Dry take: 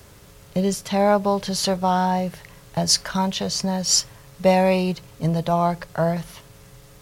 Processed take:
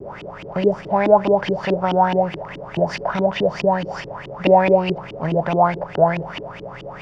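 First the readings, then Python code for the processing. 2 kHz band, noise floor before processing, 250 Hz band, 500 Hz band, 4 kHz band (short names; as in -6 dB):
+4.5 dB, -48 dBFS, 0.0 dB, +5.5 dB, -8.5 dB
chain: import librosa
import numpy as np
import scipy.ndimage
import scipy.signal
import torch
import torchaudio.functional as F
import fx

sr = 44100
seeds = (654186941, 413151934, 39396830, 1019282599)

y = fx.bin_compress(x, sr, power=0.6)
y = fx.notch(y, sr, hz=4100.0, q=11.0)
y = fx.dynamic_eq(y, sr, hz=1200.0, q=7.6, threshold_db=-44.0, ratio=4.0, max_db=-5)
y = fx.filter_lfo_lowpass(y, sr, shape='saw_up', hz=4.7, low_hz=290.0, high_hz=3100.0, q=6.2)
y = fx.vibrato(y, sr, rate_hz=0.43, depth_cents=10.0)
y = F.gain(torch.from_numpy(y), -4.0).numpy()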